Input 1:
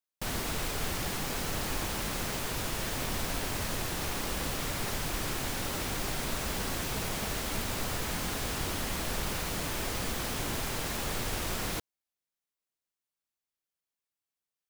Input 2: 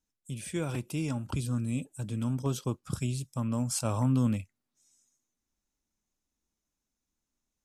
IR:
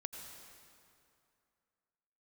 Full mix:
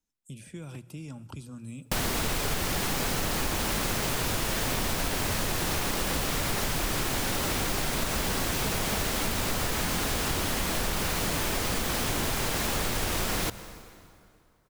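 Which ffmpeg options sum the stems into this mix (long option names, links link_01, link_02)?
-filter_complex "[0:a]acontrast=75,adelay=1700,volume=2dB,asplit=2[link_01][link_02];[link_02]volume=-9.5dB[link_03];[1:a]acrossover=split=190|1800[link_04][link_05][link_06];[link_04]acompressor=threshold=-40dB:ratio=4[link_07];[link_05]acompressor=threshold=-44dB:ratio=4[link_08];[link_06]acompressor=threshold=-51dB:ratio=4[link_09];[link_07][link_08][link_09]amix=inputs=3:normalize=0,volume=-3dB,asplit=2[link_10][link_11];[link_11]volume=-10.5dB[link_12];[2:a]atrim=start_sample=2205[link_13];[link_03][link_12]amix=inputs=2:normalize=0[link_14];[link_14][link_13]afir=irnorm=-1:irlink=0[link_15];[link_01][link_10][link_15]amix=inputs=3:normalize=0,bandreject=frequency=60:width_type=h:width=6,bandreject=frequency=120:width_type=h:width=6,acompressor=threshold=-25dB:ratio=6"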